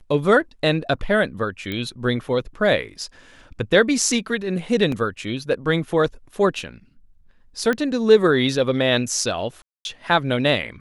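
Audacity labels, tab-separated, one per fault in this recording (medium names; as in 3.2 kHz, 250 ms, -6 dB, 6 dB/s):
1.720000	1.720000	pop -15 dBFS
4.920000	4.920000	dropout 2.7 ms
7.730000	7.730000	pop -11 dBFS
9.620000	9.850000	dropout 231 ms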